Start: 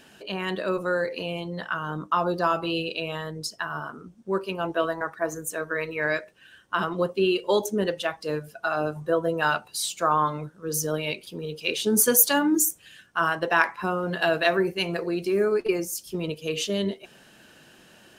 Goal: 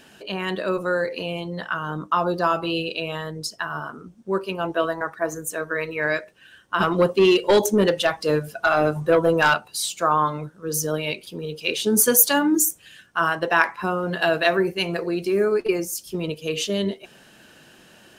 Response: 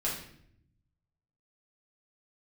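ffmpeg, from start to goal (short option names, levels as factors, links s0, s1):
-filter_complex "[0:a]asettb=1/sr,asplit=3[s0][s1][s2];[s0]atrim=end=6.804[s3];[s1]atrim=start=6.8:end=9.54,asetpts=PTS-STARTPTS,afade=t=in:d=0.004:c=qsin,afade=t=out:st=2.736:d=0.004:c=qsin,aeval=exprs='0.376*(cos(1*acos(clip(val(0)/0.376,-1,1)))-cos(1*PI/2))+0.075*(cos(5*acos(clip(val(0)/0.376,-1,1)))-cos(5*PI/2))':c=same[s4];[s2]atrim=start=9.536[s5];[s3][s4]acrossfade=d=0.004:c1=hsin:c2=qsin[s6];[s6][s5]acrossfade=d=0.004:c1=qsin:c2=hsin,volume=1.33"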